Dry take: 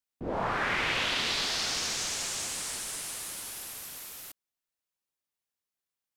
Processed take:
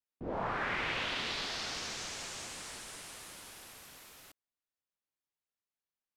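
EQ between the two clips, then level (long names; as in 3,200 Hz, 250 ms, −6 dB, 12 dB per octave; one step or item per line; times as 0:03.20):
low-pass filter 3,400 Hz 6 dB per octave
−4.5 dB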